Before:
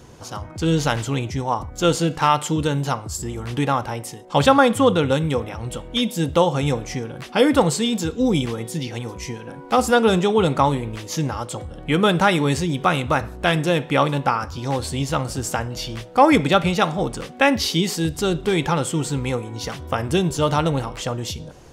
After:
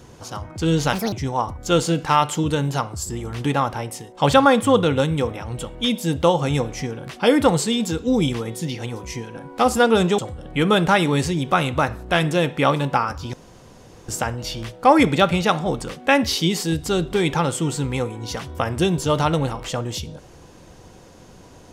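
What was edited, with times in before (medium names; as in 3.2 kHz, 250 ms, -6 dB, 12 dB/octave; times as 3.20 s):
0.93–1.25 s: speed 165%
10.31–11.51 s: delete
14.66–15.41 s: room tone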